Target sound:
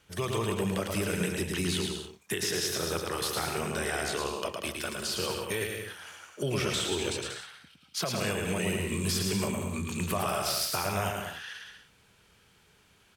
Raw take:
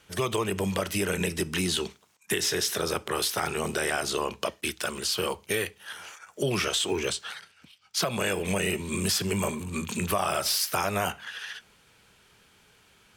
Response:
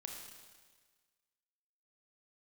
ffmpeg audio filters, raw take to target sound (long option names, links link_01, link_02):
-af "equalizer=frequency=66:width=0.44:gain=5,aecho=1:1:110|187|240.9|278.6|305:0.631|0.398|0.251|0.158|0.1,volume=-5.5dB"